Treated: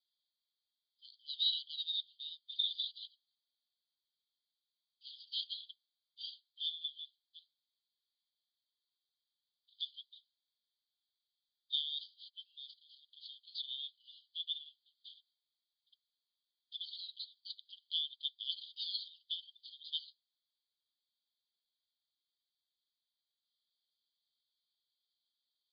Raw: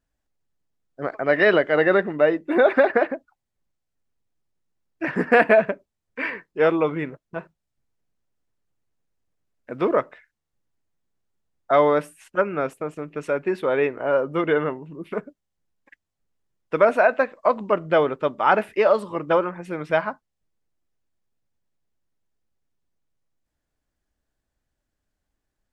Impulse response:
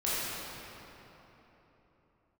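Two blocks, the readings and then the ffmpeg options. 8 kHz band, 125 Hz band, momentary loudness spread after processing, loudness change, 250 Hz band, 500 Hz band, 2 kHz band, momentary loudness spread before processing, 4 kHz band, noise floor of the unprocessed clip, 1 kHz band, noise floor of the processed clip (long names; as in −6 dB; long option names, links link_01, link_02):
can't be measured, below −40 dB, 19 LU, −18.5 dB, below −40 dB, below −40 dB, below −40 dB, 15 LU, +5.0 dB, −81 dBFS, below −40 dB, below −85 dBFS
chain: -af "asuperpass=centerf=3900:order=20:qfactor=2.3,volume=9dB"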